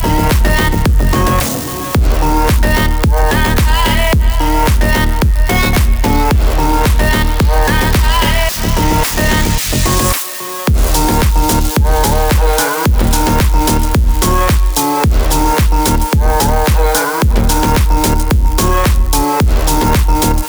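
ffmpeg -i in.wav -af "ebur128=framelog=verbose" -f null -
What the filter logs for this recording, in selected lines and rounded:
Integrated loudness:
  I:         -12.5 LUFS
  Threshold: -22.5 LUFS
Loudness range:
  LRA:         0.6 LU
  Threshold: -32.4 LUFS
  LRA low:   -12.8 LUFS
  LRA high:  -12.2 LUFS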